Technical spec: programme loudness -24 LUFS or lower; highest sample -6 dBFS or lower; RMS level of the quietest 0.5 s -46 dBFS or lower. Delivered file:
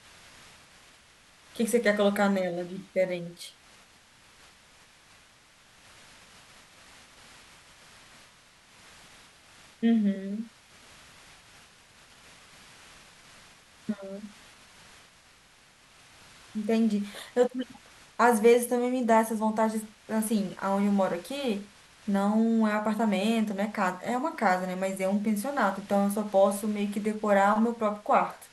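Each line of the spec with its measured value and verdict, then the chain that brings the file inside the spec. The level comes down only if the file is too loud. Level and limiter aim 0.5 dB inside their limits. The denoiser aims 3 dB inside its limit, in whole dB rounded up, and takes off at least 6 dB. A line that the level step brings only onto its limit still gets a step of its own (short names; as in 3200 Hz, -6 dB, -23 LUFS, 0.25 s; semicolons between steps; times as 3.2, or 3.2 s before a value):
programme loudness -27.0 LUFS: OK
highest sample -9.0 dBFS: OK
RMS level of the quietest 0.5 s -58 dBFS: OK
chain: none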